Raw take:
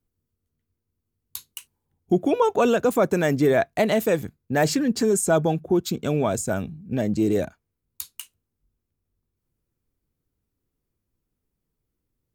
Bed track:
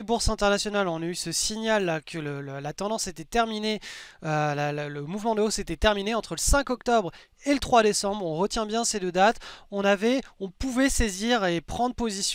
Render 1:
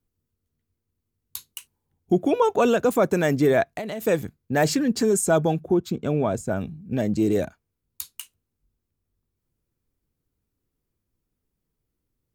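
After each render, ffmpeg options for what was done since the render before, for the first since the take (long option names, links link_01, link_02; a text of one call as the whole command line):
ffmpeg -i in.wav -filter_complex "[0:a]asplit=3[link_01][link_02][link_03];[link_01]afade=type=out:start_time=3.63:duration=0.02[link_04];[link_02]acompressor=threshold=-27dB:ratio=16:attack=3.2:release=140:knee=1:detection=peak,afade=type=in:start_time=3.63:duration=0.02,afade=type=out:start_time=4.05:duration=0.02[link_05];[link_03]afade=type=in:start_time=4.05:duration=0.02[link_06];[link_04][link_05][link_06]amix=inputs=3:normalize=0,asettb=1/sr,asplit=3[link_07][link_08][link_09];[link_07]atrim=end=5.744[link_10];[link_08]atrim=start=5.74:end=6.61,asetpts=PTS-STARTPTS,afade=type=in:duration=0.004:curve=qsin,afade=type=out:start_time=0.866:duration=0.004:curve=qsin,highshelf=frequency=2600:gain=-11[link_11];[link_09]atrim=start=6.606[link_12];[link_10][link_11]acrossfade=duration=0.004:curve1=hsin:curve2=qsin[link_13];[link_13][link_12]acrossfade=duration=0.004:curve1=qsin:curve2=hsin" out.wav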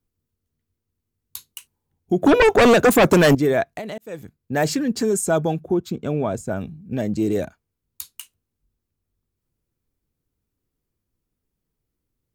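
ffmpeg -i in.wav -filter_complex "[0:a]asettb=1/sr,asplit=3[link_01][link_02][link_03];[link_01]atrim=end=2.224[link_04];[link_02]atrim=start=2.22:end=3.35,asetpts=PTS-STARTPTS,afade=type=in:duration=0.004:curve=qsin,afade=type=out:start_time=1.126:duration=0.004:curve=qsin,aeval=exprs='0.355*sin(PI/2*2.51*val(0)/0.355)':channel_layout=same[link_05];[link_03]atrim=start=3.346[link_06];[link_04][link_05]acrossfade=duration=0.004:curve1=hsin:curve2=qsin[link_07];[link_07][link_06]acrossfade=duration=0.004:curve1=qsin:curve2=hsin,asplit=2[link_08][link_09];[link_08]atrim=end=3.98,asetpts=PTS-STARTPTS,afade=type=out:start_time=3.976:duration=0.004:curve=hsin[link_10];[link_09]atrim=start=3.98,asetpts=PTS-STARTPTS,afade=type=in:duration=0.58[link_11];[link_10][link_11]concat=n=2:v=0:a=1" out.wav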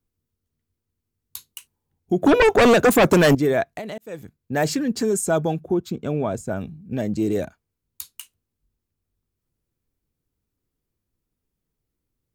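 ffmpeg -i in.wav -af "volume=-1dB" out.wav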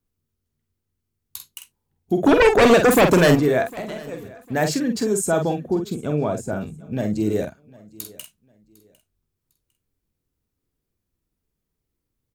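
ffmpeg -i in.wav -filter_complex "[0:a]asplit=2[link_01][link_02];[link_02]adelay=47,volume=-6.5dB[link_03];[link_01][link_03]amix=inputs=2:normalize=0,aecho=1:1:753|1506:0.0708|0.0191" out.wav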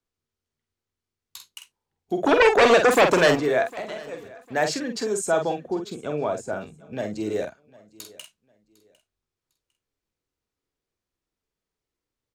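ffmpeg -i in.wav -filter_complex "[0:a]acrossover=split=390 7900:gain=0.251 1 0.2[link_01][link_02][link_03];[link_01][link_02][link_03]amix=inputs=3:normalize=0" out.wav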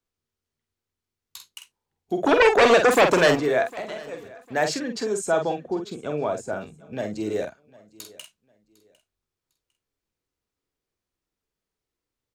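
ffmpeg -i in.wav -filter_complex "[0:a]asettb=1/sr,asplit=3[link_01][link_02][link_03];[link_01]atrim=end=4.794[link_04];[link_02]atrim=start=4.79:end=6.06,asetpts=PTS-STARTPTS,afade=type=in:duration=0.004:curve=qsin,afade=type=out:start_time=1.266:duration=0.004:curve=qsin,highshelf=frequency=8600:gain=-6[link_05];[link_03]atrim=start=6.056[link_06];[link_04][link_05]acrossfade=duration=0.004:curve1=hsin:curve2=qsin[link_07];[link_07][link_06]acrossfade=duration=0.004:curve1=qsin:curve2=hsin" out.wav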